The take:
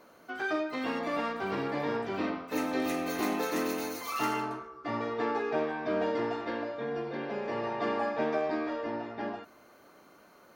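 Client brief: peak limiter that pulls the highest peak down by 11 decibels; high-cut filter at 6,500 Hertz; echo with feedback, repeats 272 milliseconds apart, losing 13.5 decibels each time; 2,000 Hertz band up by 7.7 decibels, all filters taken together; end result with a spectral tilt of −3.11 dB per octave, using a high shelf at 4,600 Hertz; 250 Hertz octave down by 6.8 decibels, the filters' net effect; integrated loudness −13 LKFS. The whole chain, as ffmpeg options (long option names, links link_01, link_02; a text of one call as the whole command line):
ffmpeg -i in.wav -af "lowpass=6500,equalizer=frequency=250:width_type=o:gain=-9,equalizer=frequency=2000:width_type=o:gain=8.5,highshelf=frequency=4600:gain=9,alimiter=level_in=2.5dB:limit=-24dB:level=0:latency=1,volume=-2.5dB,aecho=1:1:272|544:0.211|0.0444,volume=22dB" out.wav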